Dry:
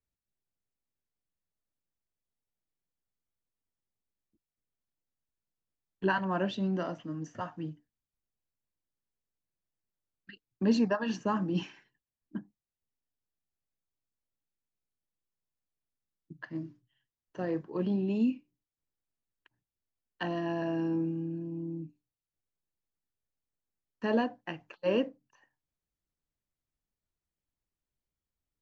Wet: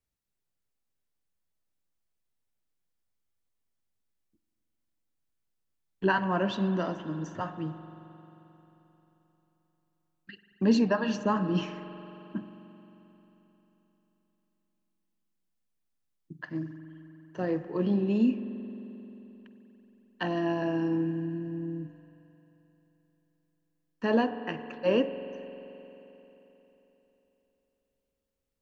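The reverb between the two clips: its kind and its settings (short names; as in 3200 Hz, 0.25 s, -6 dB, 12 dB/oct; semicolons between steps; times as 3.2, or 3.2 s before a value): spring tank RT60 3.7 s, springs 44 ms, chirp 35 ms, DRR 10.5 dB; gain +3 dB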